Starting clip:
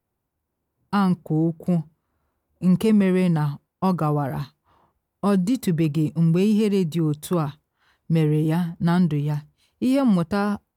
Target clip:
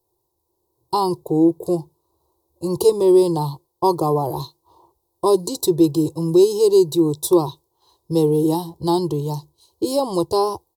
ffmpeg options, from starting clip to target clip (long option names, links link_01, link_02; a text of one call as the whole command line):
ffmpeg -i in.wav -af "firequalizer=gain_entry='entry(140,0);entry(220,-21);entry(340,13);entry(640,2);entry(980,11);entry(1400,-22);entry(2200,-20);entry(3900,11)':delay=0.05:min_phase=1" out.wav